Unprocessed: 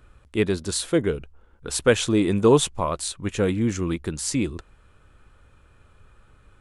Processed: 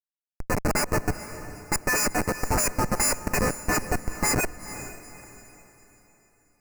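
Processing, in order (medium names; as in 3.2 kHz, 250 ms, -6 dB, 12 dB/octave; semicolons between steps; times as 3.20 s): partials quantised in pitch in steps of 6 st; peaking EQ 100 Hz -7 dB 2.7 oct; slow attack 203 ms; LFO high-pass sine 3.9 Hz 850–2300 Hz; Schmitt trigger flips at -20 dBFS; Butterworth band-stop 3.4 kHz, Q 1.3; on a send: echo that smears into a reverb 456 ms, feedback 40%, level -13 dB; on the sum: trim +2.5 dB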